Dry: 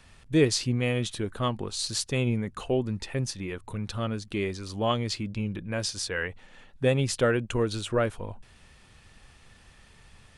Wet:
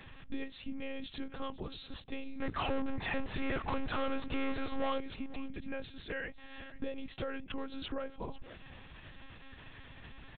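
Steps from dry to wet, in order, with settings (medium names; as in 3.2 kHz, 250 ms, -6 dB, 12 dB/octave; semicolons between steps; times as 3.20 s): compression 12:1, threshold -38 dBFS, peak gain reduction 22 dB; 2.41–4.99 s: overdrive pedal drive 37 dB, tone 1.6 kHz, clips at -28.5 dBFS; delay 499 ms -17.5 dB; monotone LPC vocoder at 8 kHz 270 Hz; trim +3 dB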